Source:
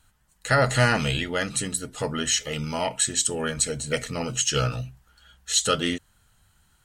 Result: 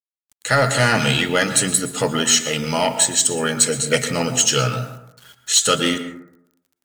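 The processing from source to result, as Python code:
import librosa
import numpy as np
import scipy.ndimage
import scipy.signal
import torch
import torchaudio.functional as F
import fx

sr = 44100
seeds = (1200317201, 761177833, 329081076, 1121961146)

p1 = scipy.signal.sosfilt(scipy.signal.butter(4, 110.0, 'highpass', fs=sr, output='sos'), x)
p2 = fx.high_shelf(p1, sr, hz=2500.0, db=3.5)
p3 = fx.hum_notches(p2, sr, base_hz=50, count=4)
p4 = fx.rider(p3, sr, range_db=3, speed_s=0.5)
p5 = np.clip(p4, -10.0 ** (-19.5 / 20.0), 10.0 ** (-19.5 / 20.0))
p6 = p4 + F.gain(torch.from_numpy(p5), -3.5).numpy()
p7 = fx.quant_dither(p6, sr, seeds[0], bits=8, dither='none')
p8 = fx.rev_plate(p7, sr, seeds[1], rt60_s=0.78, hf_ratio=0.3, predelay_ms=105, drr_db=10.0)
y = F.gain(torch.from_numpy(p8), 2.0).numpy()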